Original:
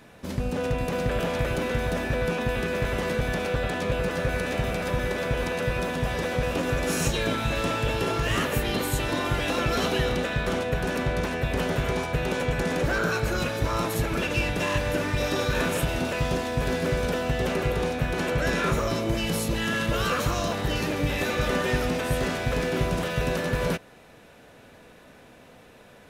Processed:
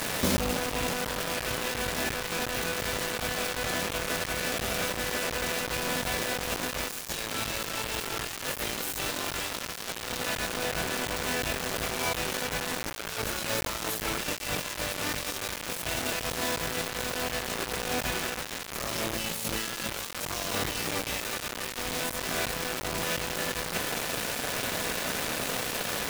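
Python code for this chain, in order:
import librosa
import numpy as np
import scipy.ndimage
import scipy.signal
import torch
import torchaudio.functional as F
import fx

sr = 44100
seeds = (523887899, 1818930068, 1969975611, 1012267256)

y = fx.tilt_eq(x, sr, slope=1.5)
y = fx.over_compress(y, sr, threshold_db=-40.0, ratio=-1.0)
y = fx.quant_dither(y, sr, seeds[0], bits=6, dither='none')
y = F.gain(torch.from_numpy(y), 7.5).numpy()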